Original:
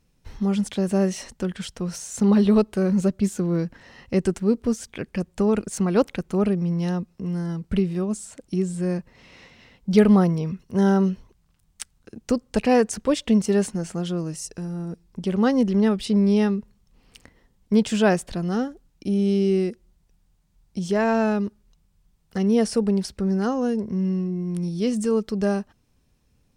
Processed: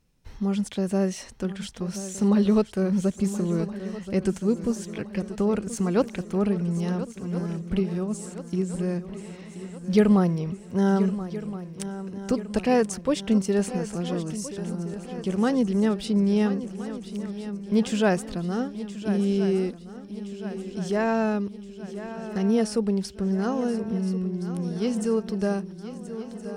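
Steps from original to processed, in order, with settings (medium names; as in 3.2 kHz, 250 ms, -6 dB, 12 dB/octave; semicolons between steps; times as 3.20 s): shuffle delay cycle 1370 ms, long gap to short 3:1, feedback 54%, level -13 dB; trim -3 dB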